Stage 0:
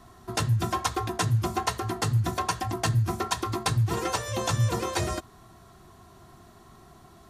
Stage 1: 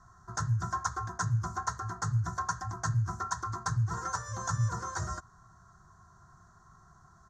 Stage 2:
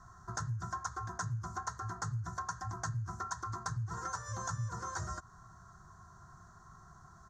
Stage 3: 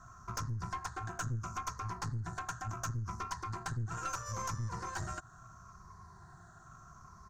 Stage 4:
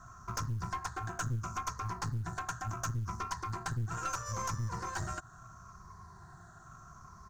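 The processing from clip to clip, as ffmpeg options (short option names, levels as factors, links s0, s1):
-af "firequalizer=gain_entry='entry(170,0);entry(250,-14);entry(630,-10);entry(1000,1);entry(1500,6);entry(2500,-28);entry(4100,-12);entry(6400,4);entry(10000,-22)':delay=0.05:min_phase=1,volume=0.562"
-af "acompressor=threshold=0.01:ratio=3,volume=1.26"
-af "afftfilt=real='re*pow(10,7/40*sin(2*PI*(0.86*log(max(b,1)*sr/1024/100)/log(2)-(-0.74)*(pts-256)/sr)))':imag='im*pow(10,7/40*sin(2*PI*(0.86*log(max(b,1)*sr/1024/100)/log(2)-(-0.74)*(pts-256)/sr)))':win_size=1024:overlap=0.75,aeval=exprs='(tanh(44.7*val(0)+0.45)-tanh(0.45))/44.7':c=same,volume=1.33"
-af "acrusher=bits=9:mode=log:mix=0:aa=0.000001,volume=1.26"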